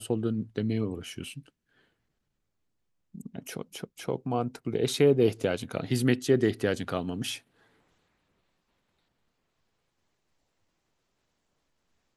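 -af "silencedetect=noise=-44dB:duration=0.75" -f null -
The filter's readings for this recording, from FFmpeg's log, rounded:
silence_start: 1.48
silence_end: 3.15 | silence_duration: 1.66
silence_start: 7.38
silence_end: 12.17 | silence_duration: 4.78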